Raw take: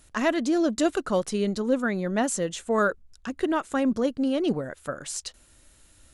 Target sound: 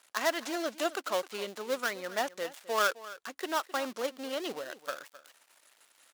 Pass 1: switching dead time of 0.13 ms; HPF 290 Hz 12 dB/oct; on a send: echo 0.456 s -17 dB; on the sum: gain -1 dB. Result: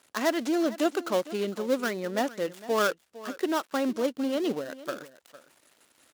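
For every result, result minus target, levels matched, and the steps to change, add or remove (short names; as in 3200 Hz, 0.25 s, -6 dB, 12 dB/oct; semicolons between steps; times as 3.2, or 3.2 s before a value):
echo 0.195 s late; 250 Hz band +7.5 dB
change: echo 0.261 s -17 dB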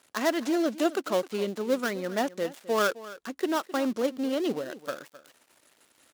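250 Hz band +7.5 dB
change: HPF 700 Hz 12 dB/oct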